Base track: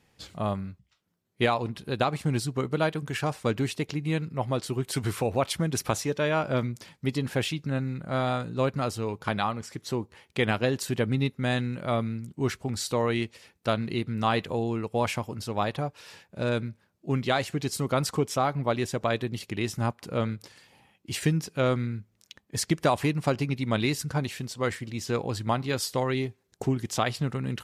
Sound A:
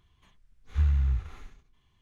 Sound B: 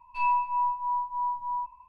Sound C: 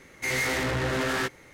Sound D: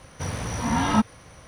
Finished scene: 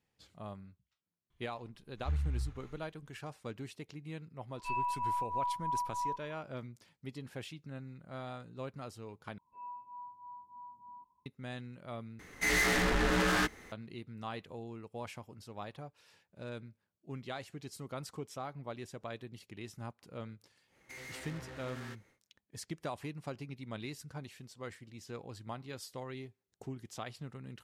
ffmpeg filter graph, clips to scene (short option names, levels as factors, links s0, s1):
-filter_complex "[2:a]asplit=2[s0][s1];[3:a]asplit=2[s2][s3];[0:a]volume=0.15[s4];[s0]acompressor=threshold=0.0501:ratio=6:attack=3.2:release=140:knee=1:detection=peak[s5];[s1]asuperpass=centerf=250:order=4:qfactor=0.74[s6];[s2]afreqshift=-81[s7];[s3]acompressor=threshold=0.0355:ratio=6:attack=3.2:release=140:knee=1:detection=peak[s8];[s4]asplit=3[s9][s10][s11];[s9]atrim=end=9.384[s12];[s6]atrim=end=1.88,asetpts=PTS-STARTPTS,volume=0.668[s13];[s10]atrim=start=11.256:end=12.194[s14];[s7]atrim=end=1.53,asetpts=PTS-STARTPTS,volume=0.841[s15];[s11]atrim=start=13.716[s16];[1:a]atrim=end=2.01,asetpts=PTS-STARTPTS,volume=0.335,afade=t=in:d=0.004:c=hsin,afade=t=out:st=2.006:d=0.004:c=hsin,adelay=1300[s17];[s5]atrim=end=1.88,asetpts=PTS-STARTPTS,volume=0.562,afade=t=in:d=0.004:c=hsin,afade=t=out:st=1.876:d=0.004:c=hsin,adelay=4500[s18];[s8]atrim=end=1.53,asetpts=PTS-STARTPTS,volume=0.15,afade=t=in:d=0.1,afade=t=out:st=1.43:d=0.1,adelay=20670[s19];[s12][s13]acrossfade=d=0.004:c1=hsin:c2=hsin[s20];[s20][s14]acrossfade=d=0.004:c1=hsin:c2=hsin[s21];[s21][s15]acrossfade=d=0.004:c1=hsin:c2=hsin[s22];[s22][s16]acrossfade=d=0.004:c1=hsin:c2=hsin[s23];[s23][s17][s18][s19]amix=inputs=4:normalize=0"